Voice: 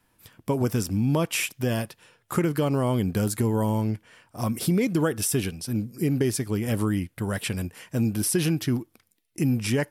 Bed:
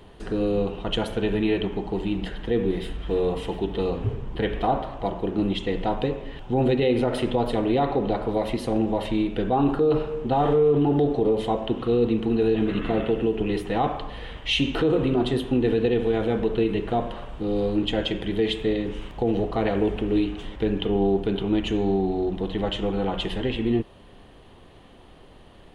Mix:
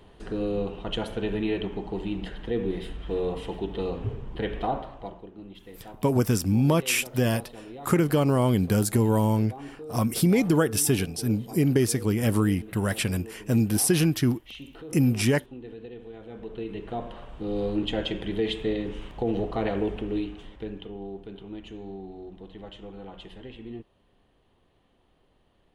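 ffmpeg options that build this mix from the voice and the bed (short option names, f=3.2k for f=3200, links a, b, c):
-filter_complex "[0:a]adelay=5550,volume=2dB[a];[1:a]volume=12dB,afade=t=out:st=4.65:d=0.65:silence=0.16788,afade=t=in:st=16.25:d=1.45:silence=0.149624,afade=t=out:st=19.65:d=1.29:silence=0.223872[b];[a][b]amix=inputs=2:normalize=0"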